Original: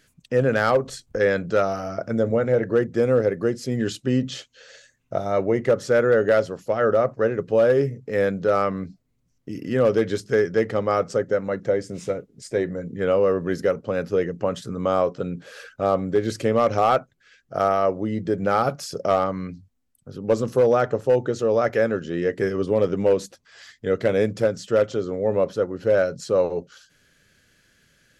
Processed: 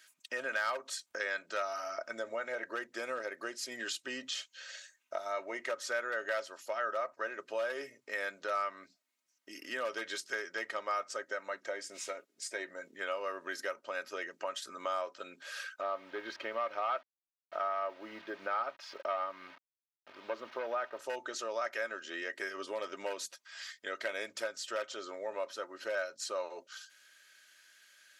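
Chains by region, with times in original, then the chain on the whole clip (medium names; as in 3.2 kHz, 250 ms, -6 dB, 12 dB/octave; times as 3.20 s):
15.81–20.99 s: send-on-delta sampling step -38.5 dBFS + distance through air 290 m
whole clip: high-pass 1.1 kHz 12 dB/octave; comb 3.2 ms, depth 57%; compression 2:1, threshold -38 dBFS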